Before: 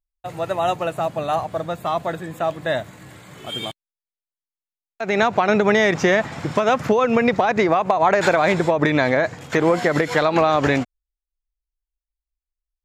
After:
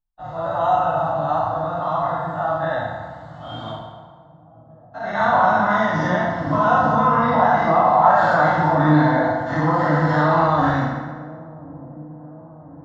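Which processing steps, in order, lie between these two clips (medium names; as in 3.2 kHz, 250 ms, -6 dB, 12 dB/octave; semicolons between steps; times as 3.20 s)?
every event in the spectrogram widened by 120 ms; Gaussian low-pass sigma 2.2 samples; static phaser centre 1 kHz, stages 4; on a send: feedback echo behind a low-pass 1035 ms, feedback 64%, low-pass 430 Hz, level -16.5 dB; on the sum: FDN reverb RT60 1.6 s, low-frequency decay 0.75×, high-frequency decay 0.65×, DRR -4.5 dB; trim -5.5 dB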